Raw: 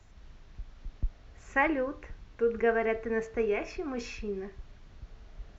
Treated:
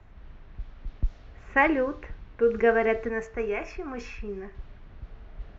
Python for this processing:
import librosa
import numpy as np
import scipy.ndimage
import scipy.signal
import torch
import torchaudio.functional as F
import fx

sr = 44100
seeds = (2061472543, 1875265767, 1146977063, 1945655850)

y = fx.env_lowpass(x, sr, base_hz=2100.0, full_db=-24.5)
y = fx.graphic_eq(y, sr, hz=(125, 250, 500, 4000), db=(-4, -5, -5, -9), at=(3.09, 4.55))
y = F.gain(torch.from_numpy(y), 5.0).numpy()